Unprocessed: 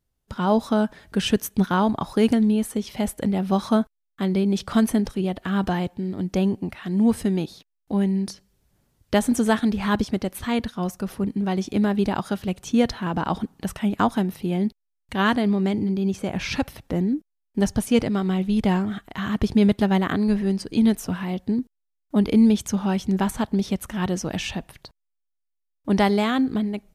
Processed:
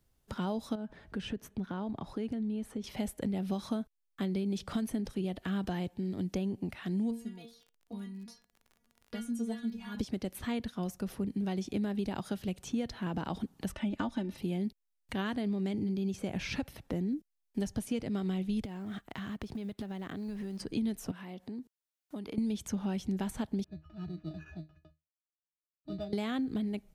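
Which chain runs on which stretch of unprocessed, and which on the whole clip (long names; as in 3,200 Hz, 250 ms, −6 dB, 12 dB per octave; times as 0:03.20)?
0:00.75–0:02.84: low-pass filter 1,600 Hz 6 dB per octave + downward compressor 2.5 to 1, threshold −29 dBFS
0:07.10–0:09.96: stiff-string resonator 230 Hz, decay 0.26 s, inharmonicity 0.002 + surface crackle 49 per second −48 dBFS
0:13.72–0:14.38: high-frequency loss of the air 73 metres + comb filter 3.4 ms, depth 81%
0:18.65–0:20.60: mu-law and A-law mismatch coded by A + downward compressor 12 to 1, threshold −30 dBFS
0:21.11–0:22.38: downward compressor 3 to 1, threshold −35 dBFS + high-pass filter 240 Hz 6 dB per octave
0:23.64–0:26.13: resonances in every octave D#, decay 0.19 s + sample-rate reduction 4,200 Hz + high-frequency loss of the air 260 metres
whole clip: downward compressor, threshold −21 dBFS; dynamic equaliser 1,100 Hz, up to −6 dB, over −44 dBFS, Q 1.1; multiband upward and downward compressor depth 40%; level −7.5 dB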